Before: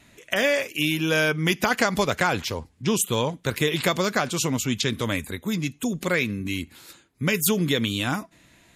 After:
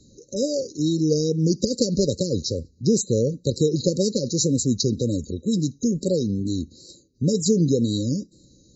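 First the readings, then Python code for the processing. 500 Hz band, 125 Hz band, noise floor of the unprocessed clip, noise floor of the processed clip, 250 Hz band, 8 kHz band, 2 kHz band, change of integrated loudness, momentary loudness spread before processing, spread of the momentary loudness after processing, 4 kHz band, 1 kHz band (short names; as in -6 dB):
+3.0 dB, +4.5 dB, -59 dBFS, -56 dBFS, +4.5 dB, +1.5 dB, under -40 dB, +1.0 dB, 7 LU, 6 LU, -3.5 dB, under -40 dB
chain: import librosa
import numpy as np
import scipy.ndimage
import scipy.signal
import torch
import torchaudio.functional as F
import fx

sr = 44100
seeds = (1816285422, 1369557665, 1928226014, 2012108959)

y = fx.brickwall_lowpass(x, sr, high_hz=7400.0)
y = fx.wow_flutter(y, sr, seeds[0], rate_hz=2.1, depth_cents=77.0)
y = fx.brickwall_bandstop(y, sr, low_hz=580.0, high_hz=3800.0)
y = F.gain(torch.from_numpy(y), 4.5).numpy()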